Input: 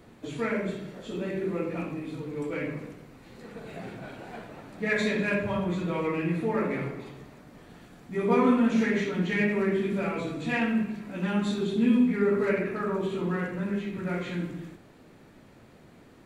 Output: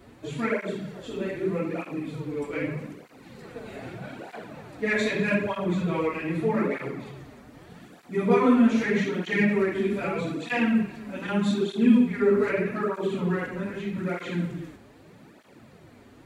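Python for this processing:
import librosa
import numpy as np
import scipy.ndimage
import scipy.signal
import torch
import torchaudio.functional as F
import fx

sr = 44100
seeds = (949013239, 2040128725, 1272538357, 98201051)

y = fx.flanger_cancel(x, sr, hz=0.81, depth_ms=6.7)
y = F.gain(torch.from_numpy(y), 5.0).numpy()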